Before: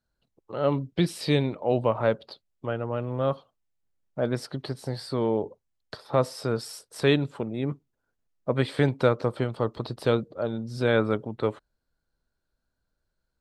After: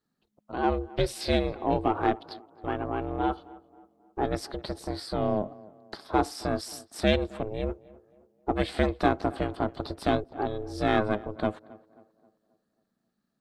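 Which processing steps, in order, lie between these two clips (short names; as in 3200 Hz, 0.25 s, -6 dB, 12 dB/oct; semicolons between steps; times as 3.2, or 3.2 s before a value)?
ring modulator 210 Hz; low shelf 130 Hz -4 dB; in parallel at -8 dB: soft clip -24 dBFS, distortion -8 dB; on the sum: tape echo 0.267 s, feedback 49%, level -19.5 dB, low-pass 1500 Hz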